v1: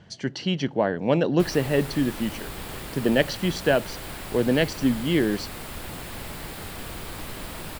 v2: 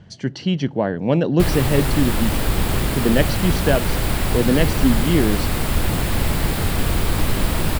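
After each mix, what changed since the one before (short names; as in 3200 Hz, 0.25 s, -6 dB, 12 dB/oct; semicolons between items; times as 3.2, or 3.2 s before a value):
background +11.5 dB; master: add low shelf 240 Hz +9.5 dB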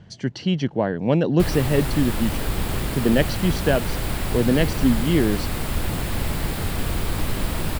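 background -5.0 dB; reverb: off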